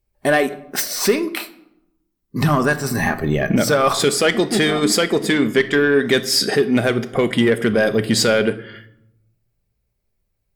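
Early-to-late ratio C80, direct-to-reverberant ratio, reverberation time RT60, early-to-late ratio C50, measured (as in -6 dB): 18.0 dB, 9.0 dB, 0.80 s, 15.5 dB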